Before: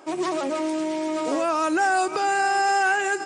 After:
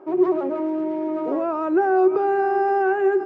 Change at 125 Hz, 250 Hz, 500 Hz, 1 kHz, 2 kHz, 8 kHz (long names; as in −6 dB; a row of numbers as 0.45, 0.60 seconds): can't be measured, +5.0 dB, +7.5 dB, −1.0 dB, −7.0 dB, below −30 dB